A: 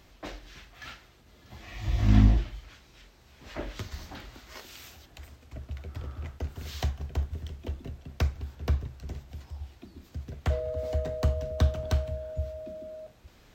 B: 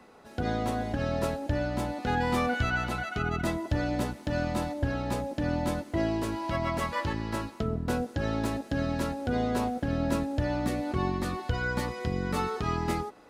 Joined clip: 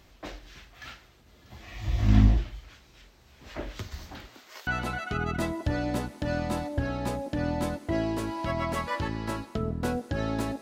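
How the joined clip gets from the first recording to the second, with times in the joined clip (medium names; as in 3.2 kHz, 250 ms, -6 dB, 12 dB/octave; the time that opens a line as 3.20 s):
A
4.26–4.67 s: high-pass 150 Hz -> 730 Hz
4.67 s: go over to B from 2.72 s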